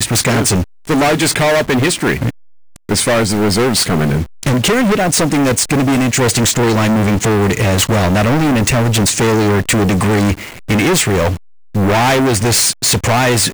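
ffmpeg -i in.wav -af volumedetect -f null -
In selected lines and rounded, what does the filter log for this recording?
mean_volume: -13.4 dB
max_volume: -6.0 dB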